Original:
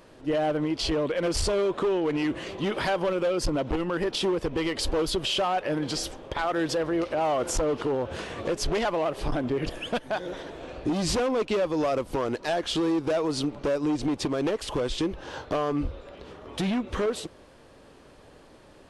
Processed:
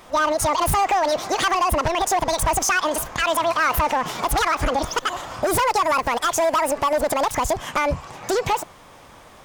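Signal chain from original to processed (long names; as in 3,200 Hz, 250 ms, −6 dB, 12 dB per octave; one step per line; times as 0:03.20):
wrong playback speed 7.5 ips tape played at 15 ips
level +6 dB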